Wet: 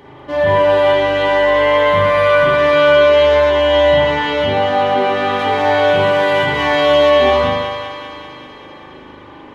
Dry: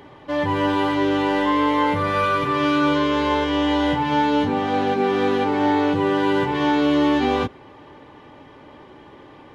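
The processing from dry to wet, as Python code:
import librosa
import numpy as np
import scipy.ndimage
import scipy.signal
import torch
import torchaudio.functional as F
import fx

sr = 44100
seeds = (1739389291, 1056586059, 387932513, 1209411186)

y = fx.high_shelf(x, sr, hz=4300.0, db=8.0, at=(5.39, 7.1))
y = fx.echo_thinned(y, sr, ms=194, feedback_pct=73, hz=540.0, wet_db=-7.5)
y = fx.rev_spring(y, sr, rt60_s=1.1, pass_ms=(39,), chirp_ms=20, drr_db=-4.5)
y = F.gain(torch.from_numpy(y), 1.0).numpy()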